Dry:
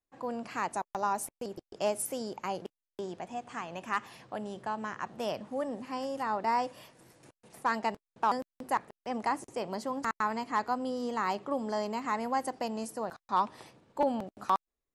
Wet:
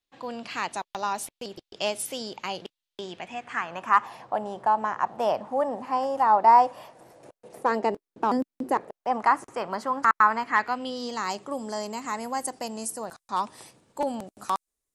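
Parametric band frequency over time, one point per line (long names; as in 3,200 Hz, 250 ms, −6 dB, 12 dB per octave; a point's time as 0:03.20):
parametric band +14.5 dB 1.4 octaves
0:03.03 3,500 Hz
0:04.12 840 Hz
0:06.76 840 Hz
0:08.55 250 Hz
0:09.27 1,300 Hz
0:10.36 1,300 Hz
0:11.49 9,100 Hz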